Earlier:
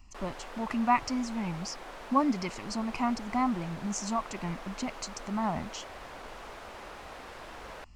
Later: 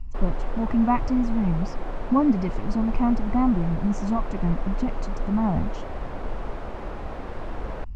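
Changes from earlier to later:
background +6.0 dB; master: add tilt EQ -4.5 dB/octave

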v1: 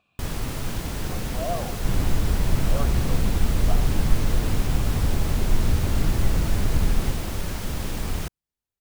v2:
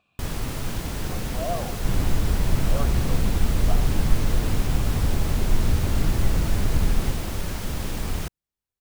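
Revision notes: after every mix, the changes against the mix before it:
no change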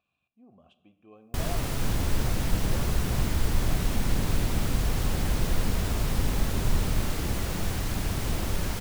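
speech -11.0 dB; first sound: entry +1.15 s; second sound -7.0 dB

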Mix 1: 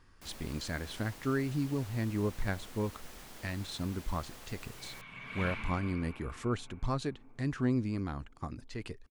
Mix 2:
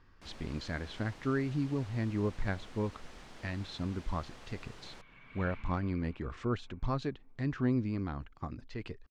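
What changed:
speech: add low-pass 6.5 kHz 12 dB/octave; second sound -10.5 dB; master: add distance through air 92 m

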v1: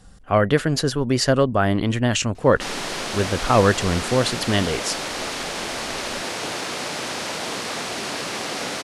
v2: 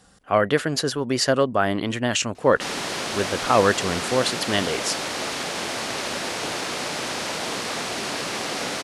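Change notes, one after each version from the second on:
speech: add high-pass 300 Hz 6 dB/octave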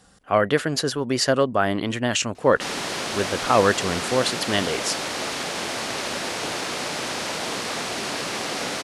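no change

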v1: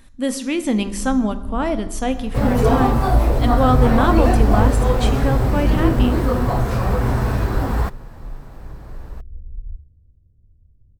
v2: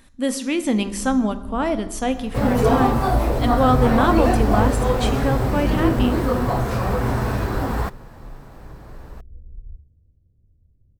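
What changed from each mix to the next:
master: add bass shelf 89 Hz -7.5 dB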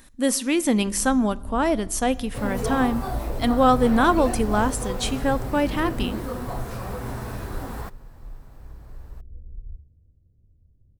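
speech: send -8.0 dB; second sound -10.5 dB; master: add treble shelf 6.7 kHz +8 dB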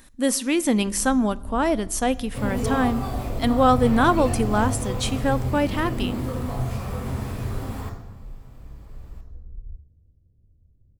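second sound: send on

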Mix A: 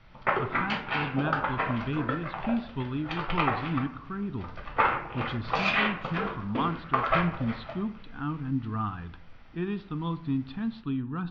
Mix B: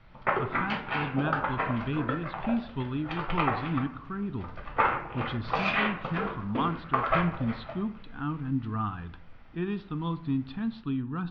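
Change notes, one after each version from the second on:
first sound: add treble shelf 4.4 kHz -10.5 dB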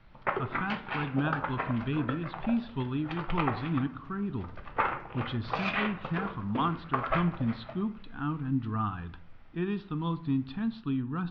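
first sound: send -7.0 dB

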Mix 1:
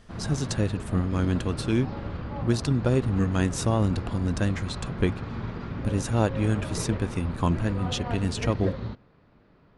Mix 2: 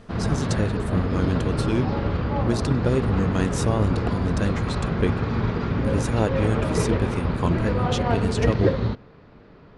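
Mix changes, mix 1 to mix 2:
background +9.5 dB; master: add peaking EQ 440 Hz +4.5 dB 0.29 oct

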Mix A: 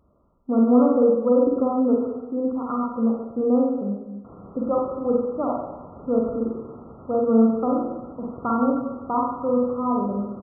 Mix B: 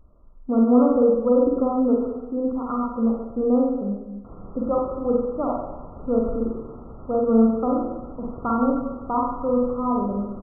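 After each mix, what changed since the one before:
master: remove high-pass 100 Hz 12 dB/octave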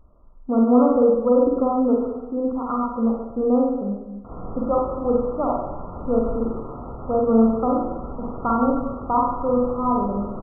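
background: send +11.0 dB; master: add peaking EQ 890 Hz +4.5 dB 1.1 oct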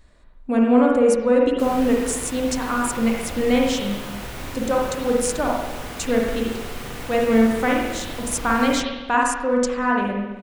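background: entry -2.65 s; master: remove brick-wall FIR low-pass 1.4 kHz

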